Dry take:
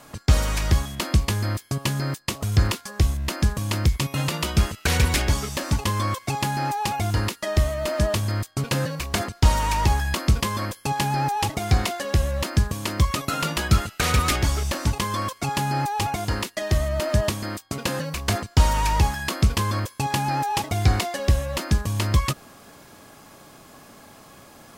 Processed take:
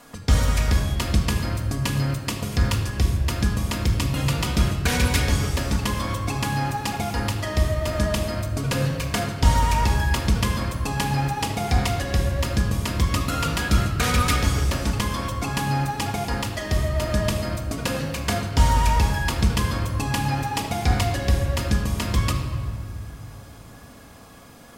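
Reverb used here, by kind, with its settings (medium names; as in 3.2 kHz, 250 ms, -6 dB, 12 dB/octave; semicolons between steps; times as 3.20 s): simulated room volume 3300 m³, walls mixed, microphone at 1.8 m; trim -2 dB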